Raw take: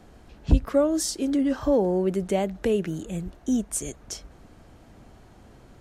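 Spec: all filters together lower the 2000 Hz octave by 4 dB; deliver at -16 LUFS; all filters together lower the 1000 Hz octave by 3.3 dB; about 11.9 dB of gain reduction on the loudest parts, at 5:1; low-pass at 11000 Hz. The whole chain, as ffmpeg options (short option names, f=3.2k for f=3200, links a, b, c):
-af "lowpass=11k,equalizer=f=1k:t=o:g=-4,equalizer=f=2k:t=o:g=-4,acompressor=threshold=-25dB:ratio=5,volume=15dB"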